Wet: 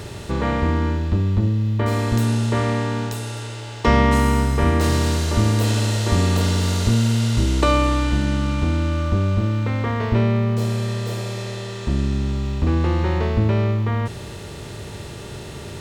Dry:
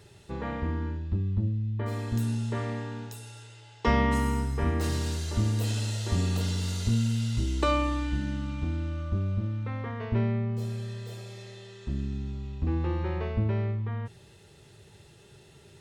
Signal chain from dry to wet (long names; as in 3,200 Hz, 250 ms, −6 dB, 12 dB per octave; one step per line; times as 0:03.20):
compressor on every frequency bin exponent 0.6
level +6.5 dB